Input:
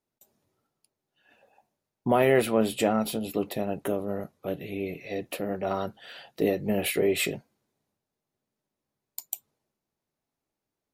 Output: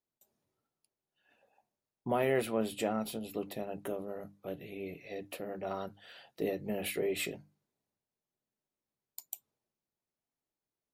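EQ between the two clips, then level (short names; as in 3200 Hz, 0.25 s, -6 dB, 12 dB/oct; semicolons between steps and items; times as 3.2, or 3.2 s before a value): notches 50/100/150/200/250/300 Hz; -8.5 dB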